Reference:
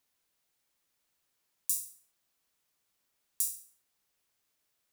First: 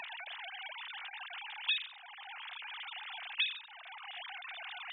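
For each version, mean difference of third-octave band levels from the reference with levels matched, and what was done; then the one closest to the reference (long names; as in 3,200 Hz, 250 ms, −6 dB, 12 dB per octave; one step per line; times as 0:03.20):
18.5 dB: three sine waves on the formant tracks
multiband upward and downward compressor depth 70%
level +8 dB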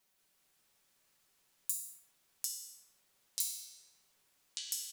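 5.5 dB: comb filter 5.3 ms, depth 93%
downward compressor 10 to 1, threshold −32 dBFS, peak gain reduction 10 dB
delay with pitch and tempo change per echo 180 ms, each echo −5 semitones, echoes 3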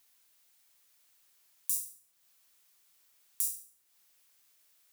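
2.0 dB: high-shelf EQ 9,600 Hz +4.5 dB
boost into a limiter +6 dB
one half of a high-frequency compander encoder only
level −7 dB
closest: third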